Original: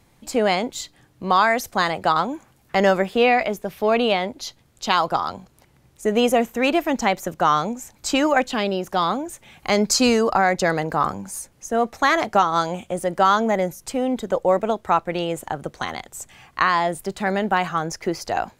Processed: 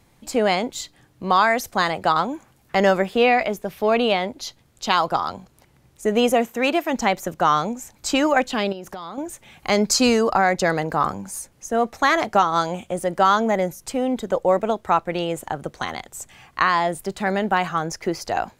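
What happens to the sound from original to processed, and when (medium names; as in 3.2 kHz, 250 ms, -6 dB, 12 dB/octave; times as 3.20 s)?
6.33–6.92 s: high-pass 120 Hz -> 340 Hz 6 dB/octave
8.72–9.18 s: compression 16:1, threshold -29 dBFS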